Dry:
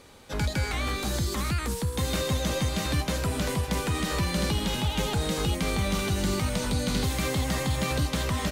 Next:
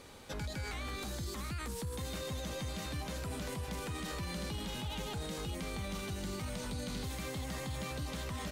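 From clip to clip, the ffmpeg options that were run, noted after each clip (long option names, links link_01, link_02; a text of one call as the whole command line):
ffmpeg -i in.wav -af "alimiter=level_in=6.5dB:limit=-24dB:level=0:latency=1:release=79,volume=-6.5dB,volume=-1.5dB" out.wav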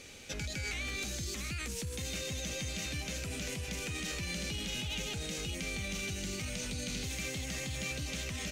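ffmpeg -i in.wav -af "equalizer=frequency=1000:width_type=o:width=0.67:gain=-11,equalizer=frequency=2500:width_type=o:width=0.67:gain=10,equalizer=frequency=6300:width_type=o:width=0.67:gain=10" out.wav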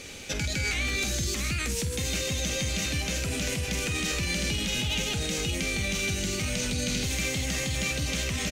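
ffmpeg -i in.wav -filter_complex "[0:a]asplit=2[link_01][link_02];[link_02]adelay=49,volume=-11dB[link_03];[link_01][link_03]amix=inputs=2:normalize=0,volume=8.5dB" out.wav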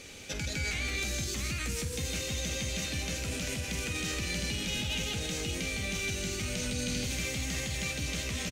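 ffmpeg -i in.wav -af "aecho=1:1:171:0.447,volume=-5.5dB" out.wav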